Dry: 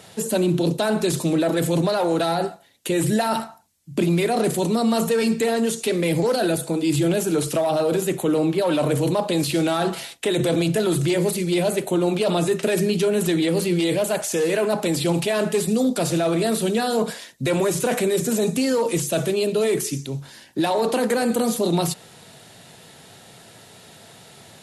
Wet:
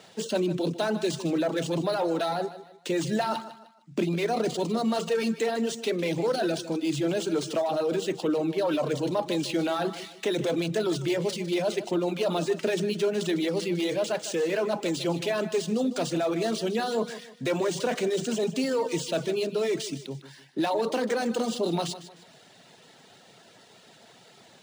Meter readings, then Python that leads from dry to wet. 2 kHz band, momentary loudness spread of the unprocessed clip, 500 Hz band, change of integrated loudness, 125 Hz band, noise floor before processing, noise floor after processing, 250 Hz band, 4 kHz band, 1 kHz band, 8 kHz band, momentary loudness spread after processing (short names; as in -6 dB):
-5.5 dB, 4 LU, -5.5 dB, -6.5 dB, -9.5 dB, -47 dBFS, -55 dBFS, -7.0 dB, -5.0 dB, -5.5 dB, -10.0 dB, 4 LU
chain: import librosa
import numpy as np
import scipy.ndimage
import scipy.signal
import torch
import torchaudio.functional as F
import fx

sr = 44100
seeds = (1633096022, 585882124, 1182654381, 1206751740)

p1 = fx.dereverb_blind(x, sr, rt60_s=0.73)
p2 = scipy.signal.sosfilt(scipy.signal.butter(2, 180.0, 'highpass', fs=sr, output='sos'), p1)
p3 = p2 + fx.echo_feedback(p2, sr, ms=153, feedback_pct=36, wet_db=-14.0, dry=0)
p4 = np.interp(np.arange(len(p3)), np.arange(len(p3))[::3], p3[::3])
y = p4 * librosa.db_to_amplitude(-4.5)